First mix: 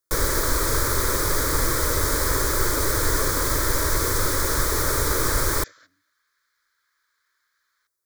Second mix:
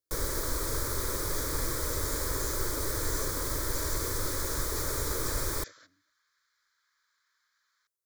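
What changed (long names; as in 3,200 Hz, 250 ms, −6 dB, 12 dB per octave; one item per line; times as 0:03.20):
first sound −9.0 dB
master: add parametric band 1,600 Hz −4 dB 1.5 octaves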